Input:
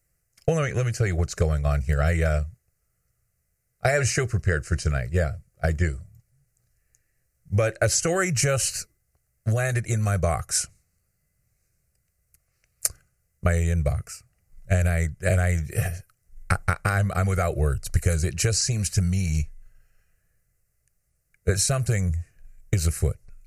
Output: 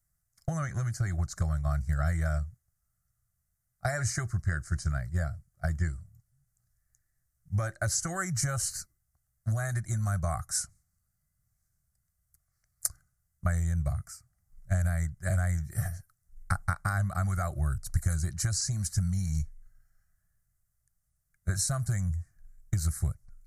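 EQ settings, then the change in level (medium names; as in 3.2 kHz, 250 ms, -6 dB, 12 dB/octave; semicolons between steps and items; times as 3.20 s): static phaser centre 1.1 kHz, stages 4; -5.0 dB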